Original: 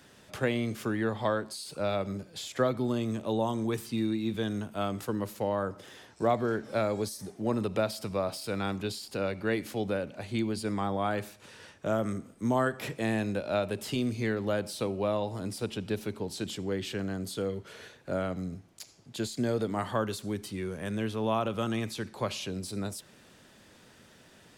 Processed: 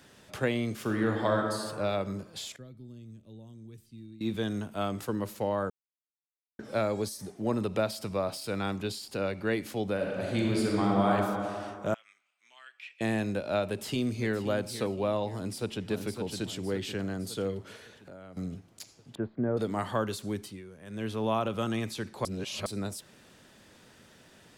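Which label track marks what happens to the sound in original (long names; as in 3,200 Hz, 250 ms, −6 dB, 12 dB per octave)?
0.810000	1.450000	thrown reverb, RT60 1.8 s, DRR 1.5 dB
2.560000	4.210000	guitar amp tone stack bass-middle-treble 10-0-1
5.700000	6.590000	silence
9.940000	11.120000	thrown reverb, RT60 2.4 s, DRR −2.5 dB
11.940000	13.010000	four-pole ladder band-pass 2,800 Hz, resonance 65%
13.650000	14.340000	delay throw 520 ms, feedback 35%, level −12.5 dB
15.330000	15.890000	delay throw 560 ms, feedback 55%, level −5.5 dB
17.760000	18.370000	downward compressor 4 to 1, threshold −47 dBFS
19.150000	19.570000	low-pass filter 1,500 Hz 24 dB per octave
20.370000	21.120000	duck −12.5 dB, fades 0.26 s
22.250000	22.660000	reverse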